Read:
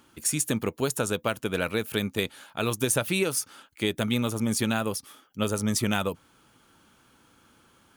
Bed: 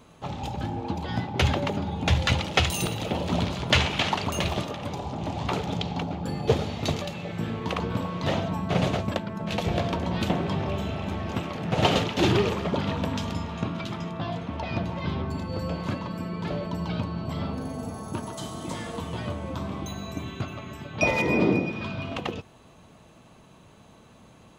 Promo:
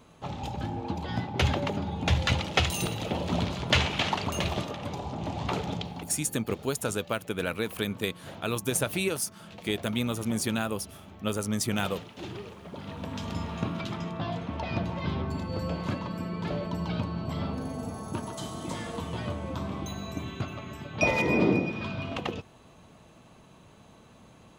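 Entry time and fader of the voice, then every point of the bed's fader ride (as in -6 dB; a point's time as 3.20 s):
5.85 s, -3.0 dB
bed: 5.69 s -2.5 dB
6.35 s -18 dB
12.58 s -18 dB
13.42 s -1.5 dB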